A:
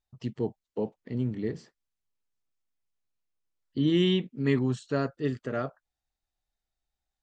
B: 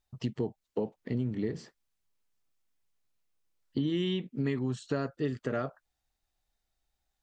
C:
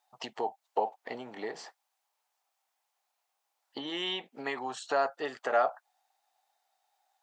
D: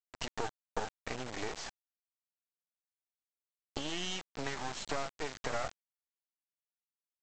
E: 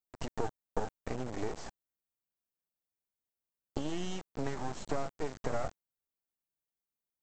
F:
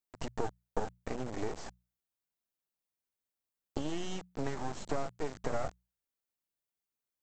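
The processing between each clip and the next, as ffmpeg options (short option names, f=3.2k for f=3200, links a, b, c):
-af "acompressor=threshold=-33dB:ratio=6,volume=5dB"
-af "highpass=f=780:t=q:w=4.9,volume=5dB"
-af "acompressor=threshold=-40dB:ratio=4,aresample=16000,acrusher=bits=5:dc=4:mix=0:aa=0.000001,aresample=44100,volume=7.5dB"
-af "equalizer=f=3.4k:w=0.33:g=-15,volume=6dB"
-af "bandreject=f=60:t=h:w=6,bandreject=f=120:t=h:w=6,bandreject=f=180:t=h:w=6"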